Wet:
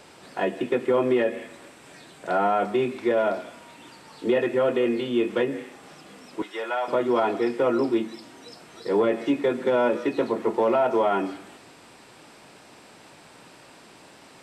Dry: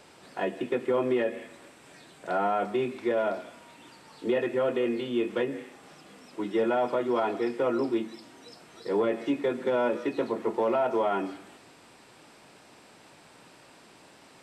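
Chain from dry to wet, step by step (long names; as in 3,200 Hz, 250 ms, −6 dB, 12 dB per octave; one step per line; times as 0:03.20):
0:06.42–0:06.88: high-pass filter 860 Hz 12 dB per octave
level +4.5 dB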